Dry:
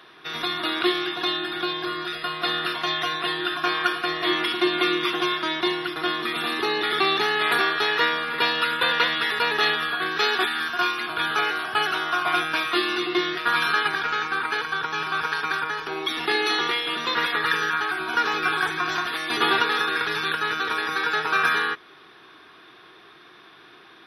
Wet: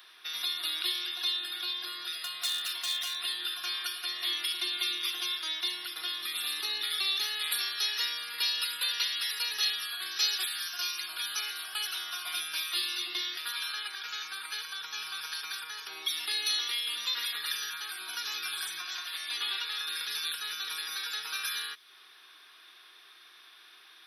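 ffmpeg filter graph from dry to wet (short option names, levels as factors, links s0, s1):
-filter_complex "[0:a]asettb=1/sr,asplit=3[s0][s1][s2];[s0]atrim=end=2.224[s3];[s1]atrim=start=2.22:end=3.18,asetpts=PTS-STARTPTS,afade=t=in:d=0.004:c=qsin,afade=t=out:st=0.956:d=0.004:c=qsin,bandreject=f=60:t=h:w=6,bandreject=f=120:t=h:w=6,bandreject=f=180:t=h:w=6,bandreject=f=240:t=h:w=6,bandreject=f=300:t=h:w=6,bandreject=f=360:t=h:w=6,bandreject=f=420:t=h:w=6,bandreject=f=480:t=h:w=6,bandreject=f=540:t=h:w=6,bandreject=f=600:t=h:w=6,asoftclip=type=hard:threshold=0.0944[s4];[s2]atrim=start=3.176[s5];[s3][s4]acrossfade=d=0.004:c1=hsin:c2=qsin[s6];[s6][s5]acrossfade=d=0.004:c1=qsin:c2=hsin,asettb=1/sr,asplit=3[s7][s8][s9];[s7]atrim=end=7.614[s10];[s8]atrim=start=7.61:end=11.45,asetpts=PTS-STARTPTS,afade=t=in:d=0.004:c=qsin,afade=t=out:st=3.836:d=0.004:c=qsin,equalizer=f=5600:t=o:w=0.46:g=6.5,bandreject=f=3500:w=19[s11];[s9]atrim=start=11.446[s12];[s10][s11]acrossfade=d=0.004:c1=hsin:c2=qsin[s13];[s13][s12]acrossfade=d=0.004:c1=qsin:c2=hsin,asettb=1/sr,asplit=3[s14][s15][s16];[s14]atrim=end=13.524[s17];[s15]atrim=start=13.52:end=14.04,asetpts=PTS-STARTPTS,afade=t=in:d=0.004:c=qsin,afade=t=out:st=0.516:d=0.004:c=qsin,highpass=270,aemphasis=mode=reproduction:type=cd[s18];[s16]atrim=start=14.036[s19];[s17][s18]acrossfade=d=0.004:c1=hsin:c2=qsin[s20];[s20][s19]acrossfade=d=0.004:c1=qsin:c2=hsin,asettb=1/sr,asplit=3[s21][s22][s23];[s21]atrim=end=18.824[s24];[s22]atrim=start=18.82:end=19.87,asetpts=PTS-STARTPTS,afade=t=in:d=0.004:c=qsin,afade=t=out:st=1.046:d=0.004:c=qsin,highpass=f=400:p=1,acrossover=split=4400[s25][s26];[s26]acompressor=threshold=0.00447:ratio=4:attack=1:release=60[s27];[s25][s27]amix=inputs=2:normalize=0[s28];[s23]atrim=start=19.866[s29];[s24][s28]acrossfade=d=0.004:c1=hsin:c2=qsin[s30];[s30][s29]acrossfade=d=0.004:c1=qsin:c2=hsin,aderivative,acrossover=split=230|3000[s31][s32][s33];[s32]acompressor=threshold=0.00316:ratio=3[s34];[s31][s34][s33]amix=inputs=3:normalize=0,volume=1.78"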